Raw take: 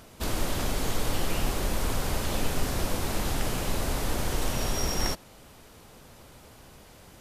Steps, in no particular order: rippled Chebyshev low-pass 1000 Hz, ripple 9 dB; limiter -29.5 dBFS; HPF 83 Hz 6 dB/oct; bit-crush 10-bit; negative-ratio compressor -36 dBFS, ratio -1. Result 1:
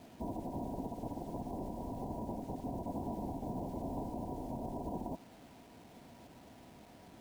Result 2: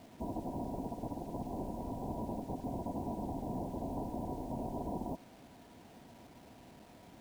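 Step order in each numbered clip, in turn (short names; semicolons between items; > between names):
rippled Chebyshev low-pass > negative-ratio compressor > bit-crush > limiter > HPF; rippled Chebyshev low-pass > negative-ratio compressor > HPF > limiter > bit-crush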